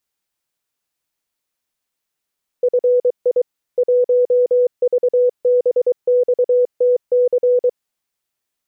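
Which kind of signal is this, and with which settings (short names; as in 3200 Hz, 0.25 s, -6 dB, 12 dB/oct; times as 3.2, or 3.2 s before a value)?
Morse "FI 1VBXTC" 23 wpm 494 Hz -10.5 dBFS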